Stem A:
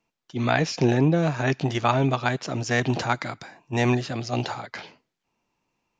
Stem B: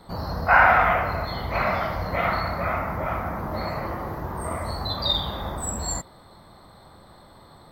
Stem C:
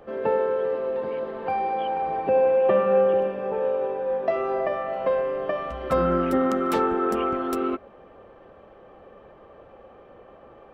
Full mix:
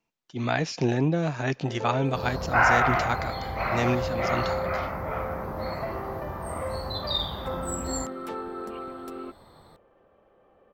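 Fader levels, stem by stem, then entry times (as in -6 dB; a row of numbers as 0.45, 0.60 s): -4.0, -4.5, -12.0 dB; 0.00, 2.05, 1.55 s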